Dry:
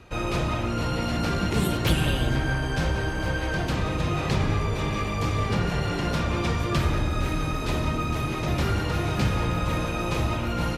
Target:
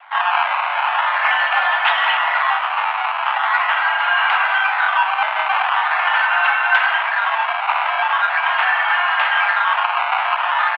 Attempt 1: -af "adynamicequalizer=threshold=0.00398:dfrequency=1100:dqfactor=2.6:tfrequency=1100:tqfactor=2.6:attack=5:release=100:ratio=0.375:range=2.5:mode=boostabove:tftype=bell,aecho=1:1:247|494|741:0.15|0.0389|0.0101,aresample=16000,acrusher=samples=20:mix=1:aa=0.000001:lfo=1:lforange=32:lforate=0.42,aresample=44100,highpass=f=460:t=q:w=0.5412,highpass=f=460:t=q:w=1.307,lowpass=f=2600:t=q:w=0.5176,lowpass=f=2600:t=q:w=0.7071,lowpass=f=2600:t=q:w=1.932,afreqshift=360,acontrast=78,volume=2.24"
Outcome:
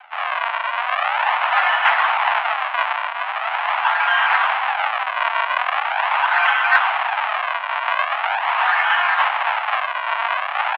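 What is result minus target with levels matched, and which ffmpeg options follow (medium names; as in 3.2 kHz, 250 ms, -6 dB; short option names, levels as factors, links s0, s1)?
decimation with a swept rate: distortion +5 dB
-af "adynamicequalizer=threshold=0.00398:dfrequency=1100:dqfactor=2.6:tfrequency=1100:tqfactor=2.6:attack=5:release=100:ratio=0.375:range=2.5:mode=boostabove:tftype=bell,aecho=1:1:247|494|741:0.15|0.0389|0.0101,aresample=16000,acrusher=samples=6:mix=1:aa=0.000001:lfo=1:lforange=9.6:lforate=0.42,aresample=44100,highpass=f=460:t=q:w=0.5412,highpass=f=460:t=q:w=1.307,lowpass=f=2600:t=q:w=0.5176,lowpass=f=2600:t=q:w=0.7071,lowpass=f=2600:t=q:w=1.932,afreqshift=360,acontrast=78,volume=2.24"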